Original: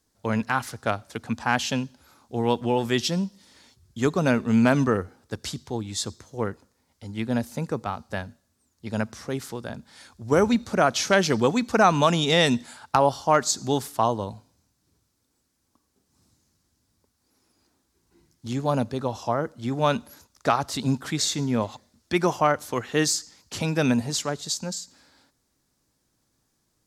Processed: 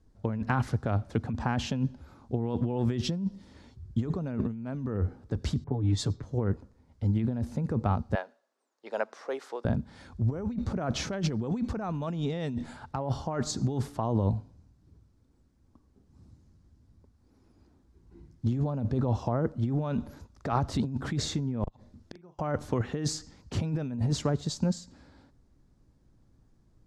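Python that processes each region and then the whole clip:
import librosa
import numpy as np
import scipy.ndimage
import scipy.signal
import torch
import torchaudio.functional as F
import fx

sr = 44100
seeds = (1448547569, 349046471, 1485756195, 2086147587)

y = fx.chain(x, sr, fx.env_lowpass(base_hz=960.0, full_db=-25.0),
    fx.comb(ms=7.0, depth=0.95),
    fx.band_widen(depth_pct=40), at=(5.64, 6.23))
y = fx.chain(y, sr, fx.highpass(hz=490.0, slope=24),
    fx.high_shelf(hz=5900.0, db=-5.5), at=(8.15, 9.65))
y = fx.chain(y, sr, fx.gate_flip(shuts_db=-23.0, range_db=-37),
    fx.doubler(ms=41.0, db=-10.5), at=(21.63, 22.39))
y = scipy.signal.sosfilt(scipy.signal.butter(2, 11000.0, 'lowpass', fs=sr, output='sos'), y)
y = fx.tilt_eq(y, sr, slope=-4.0)
y = fx.over_compress(y, sr, threshold_db=-23.0, ratio=-1.0)
y = F.gain(torch.from_numpy(y), -6.0).numpy()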